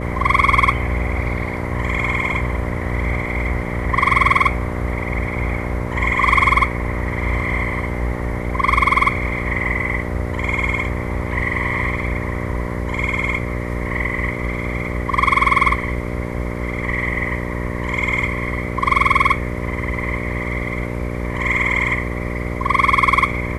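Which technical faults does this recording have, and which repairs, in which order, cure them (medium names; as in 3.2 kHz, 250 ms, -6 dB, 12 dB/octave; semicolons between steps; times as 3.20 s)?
buzz 60 Hz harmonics 10 -25 dBFS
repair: de-hum 60 Hz, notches 10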